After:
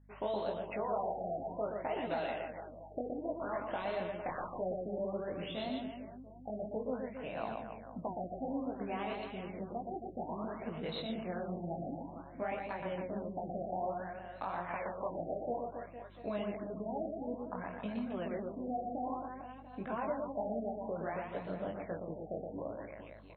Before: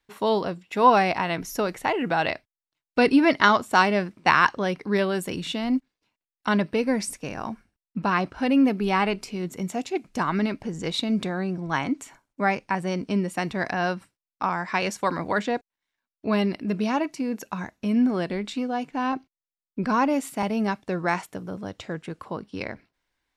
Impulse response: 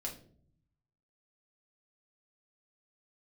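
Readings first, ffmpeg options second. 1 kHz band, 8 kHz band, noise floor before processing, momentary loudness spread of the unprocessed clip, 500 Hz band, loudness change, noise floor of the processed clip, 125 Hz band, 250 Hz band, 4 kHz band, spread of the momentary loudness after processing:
-15.0 dB, under -40 dB, under -85 dBFS, 15 LU, -10.0 dB, -15.0 dB, -51 dBFS, -14.0 dB, -16.5 dB, -18.0 dB, 7 LU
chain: -af "aemphasis=mode=production:type=75fm,aeval=exprs='(mod(2.11*val(0)+1,2)-1)/2.11':c=same,alimiter=limit=0.178:level=0:latency=1,acompressor=threshold=0.0282:ratio=6,equalizer=f=630:t=o:w=0.72:g=12,flanger=delay=16.5:depth=7.7:speed=1.5,aeval=exprs='val(0)+0.002*(sin(2*PI*50*n/s)+sin(2*PI*2*50*n/s)/2+sin(2*PI*3*50*n/s)/3+sin(2*PI*4*50*n/s)/4+sin(2*PI*5*50*n/s)/5)':c=same,aecho=1:1:120|270|457.5|691.9|984.8:0.631|0.398|0.251|0.158|0.1,afftfilt=real='re*lt(b*sr/1024,800*pow(4300/800,0.5+0.5*sin(2*PI*0.57*pts/sr)))':imag='im*lt(b*sr/1024,800*pow(4300/800,0.5+0.5*sin(2*PI*0.57*pts/sr)))':win_size=1024:overlap=0.75,volume=0.473"

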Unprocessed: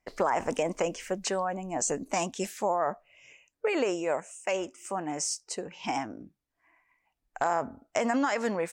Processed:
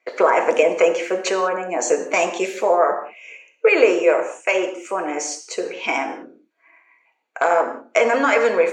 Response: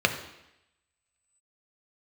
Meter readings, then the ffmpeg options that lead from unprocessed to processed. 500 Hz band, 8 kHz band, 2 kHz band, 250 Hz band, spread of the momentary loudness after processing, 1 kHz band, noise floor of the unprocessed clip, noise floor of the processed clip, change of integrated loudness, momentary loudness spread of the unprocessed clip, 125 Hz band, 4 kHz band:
+13.5 dB, +4.5 dB, +14.5 dB, +6.0 dB, 10 LU, +9.5 dB, -82 dBFS, -66 dBFS, +11.5 dB, 7 LU, no reading, +8.0 dB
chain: -filter_complex "[0:a]highpass=f=320:w=0.5412,highpass=f=320:w=1.3066,highshelf=f=10000:g=-6[s0];[1:a]atrim=start_sample=2205,afade=t=out:st=0.24:d=0.01,atrim=end_sample=11025,asetrate=41013,aresample=44100[s1];[s0][s1]afir=irnorm=-1:irlink=0,volume=0.841"

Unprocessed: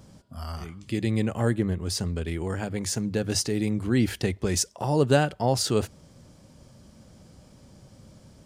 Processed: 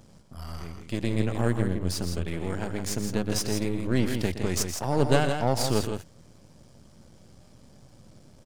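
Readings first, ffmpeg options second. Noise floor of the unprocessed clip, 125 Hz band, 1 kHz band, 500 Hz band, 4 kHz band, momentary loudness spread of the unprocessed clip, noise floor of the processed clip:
-54 dBFS, -1.5 dB, -0.5 dB, -1.5 dB, -2.0 dB, 14 LU, -54 dBFS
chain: -filter_complex "[0:a]aeval=exprs='if(lt(val(0),0),0.251*val(0),val(0))':c=same,asplit=2[s0][s1];[s1]aecho=0:1:119.5|163.3:0.251|0.447[s2];[s0][s2]amix=inputs=2:normalize=0"

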